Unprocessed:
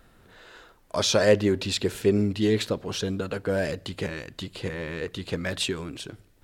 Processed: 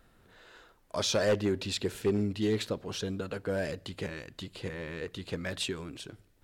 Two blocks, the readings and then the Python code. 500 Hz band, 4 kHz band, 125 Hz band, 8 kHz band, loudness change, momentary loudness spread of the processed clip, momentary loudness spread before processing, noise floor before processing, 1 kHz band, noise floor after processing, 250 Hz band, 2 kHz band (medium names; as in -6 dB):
-6.5 dB, -6.0 dB, -6.0 dB, -6.0 dB, -6.5 dB, 12 LU, 13 LU, -59 dBFS, -6.0 dB, -65 dBFS, -6.5 dB, -6.5 dB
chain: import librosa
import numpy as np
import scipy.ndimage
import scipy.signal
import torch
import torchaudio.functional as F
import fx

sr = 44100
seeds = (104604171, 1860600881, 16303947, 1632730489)

y = np.clip(x, -10.0 ** (-15.0 / 20.0), 10.0 ** (-15.0 / 20.0))
y = F.gain(torch.from_numpy(y), -6.0).numpy()